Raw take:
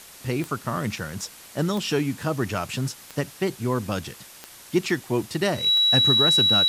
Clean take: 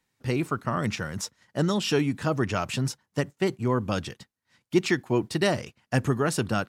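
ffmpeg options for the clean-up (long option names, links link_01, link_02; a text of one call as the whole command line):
ffmpeg -i in.wav -af "adeclick=threshold=4,bandreject=frequency=3900:width=30,afwtdn=0.0063" out.wav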